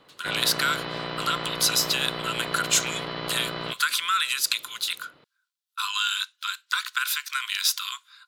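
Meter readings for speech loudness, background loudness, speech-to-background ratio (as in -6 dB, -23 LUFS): -25.5 LUFS, -32.5 LUFS, 7.0 dB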